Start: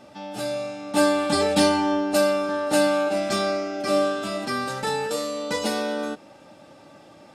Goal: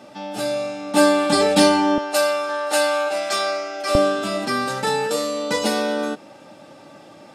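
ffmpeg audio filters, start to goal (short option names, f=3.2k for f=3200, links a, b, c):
-af "asetnsamples=n=441:p=0,asendcmd='1.98 highpass f 640;3.95 highpass f 110',highpass=140,volume=4.5dB"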